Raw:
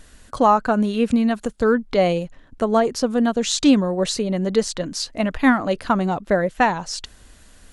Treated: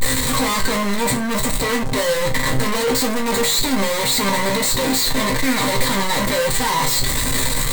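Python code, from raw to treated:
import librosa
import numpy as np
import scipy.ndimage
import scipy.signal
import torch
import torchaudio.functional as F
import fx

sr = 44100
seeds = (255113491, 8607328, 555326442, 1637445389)

p1 = np.sign(x) * np.sqrt(np.mean(np.square(x)))
p2 = fx.ripple_eq(p1, sr, per_octave=1.0, db=18)
p3 = fx.leveller(p2, sr, passes=5)
p4 = fx.resonator_bank(p3, sr, root=48, chord='minor', decay_s=0.28)
p5 = 10.0 ** (-27.0 / 20.0) * (np.abs((p4 / 10.0 ** (-27.0 / 20.0) + 3.0) % 4.0 - 2.0) - 1.0)
p6 = p4 + (p5 * 10.0 ** (-5.0 / 20.0))
y = p6 * 10.0 ** (3.0 / 20.0)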